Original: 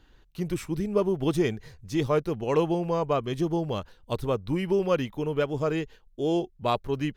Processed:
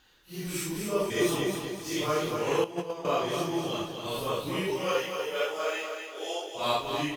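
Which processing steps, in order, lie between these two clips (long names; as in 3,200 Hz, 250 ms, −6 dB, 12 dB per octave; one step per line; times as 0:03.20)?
random phases in long frames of 200 ms
0:01.10–0:01.55: reverse
0:04.70–0:06.55: high-pass filter 440 Hz 24 dB per octave
repeating echo 245 ms, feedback 42%, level −6 dB
0:02.64–0:03.05: noise gate −20 dBFS, range −12 dB
spectral tilt +3 dB per octave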